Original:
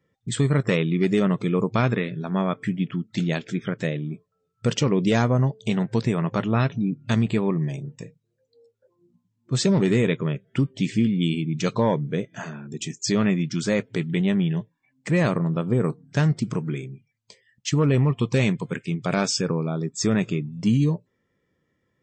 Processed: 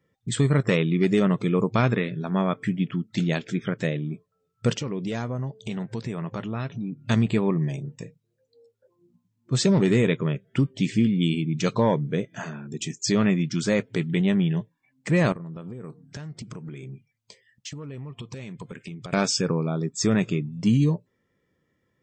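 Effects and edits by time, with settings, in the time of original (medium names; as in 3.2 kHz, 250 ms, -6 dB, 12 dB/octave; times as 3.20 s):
4.73–7.02 s: compression 2:1, threshold -33 dBFS
15.32–19.13 s: compression 16:1, threshold -33 dBFS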